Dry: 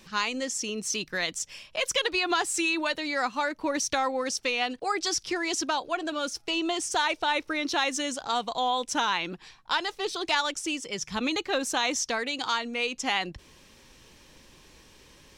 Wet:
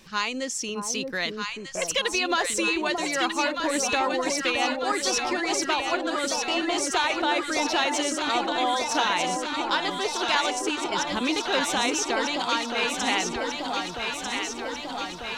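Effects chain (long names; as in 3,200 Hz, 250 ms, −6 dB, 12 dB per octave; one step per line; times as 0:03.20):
0:01.30–0:01.82: Butterworth low-pass 2,000 Hz
delay that swaps between a low-pass and a high-pass 622 ms, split 960 Hz, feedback 83%, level −3 dB
level +1 dB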